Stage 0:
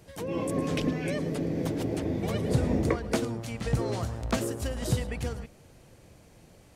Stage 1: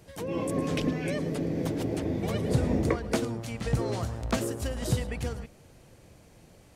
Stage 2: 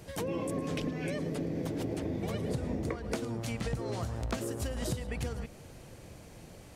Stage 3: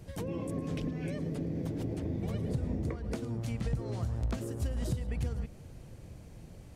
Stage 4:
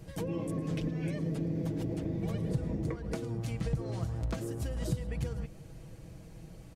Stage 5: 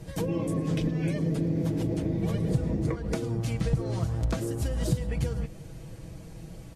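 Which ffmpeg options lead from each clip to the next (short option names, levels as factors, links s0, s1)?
-af anull
-af "acompressor=threshold=0.0158:ratio=6,volume=1.68"
-af "lowshelf=f=250:g=12,volume=0.447"
-af "aecho=1:1:6.2:0.47"
-af "volume=2" -ar 48000 -c:a libvorbis -b:a 32k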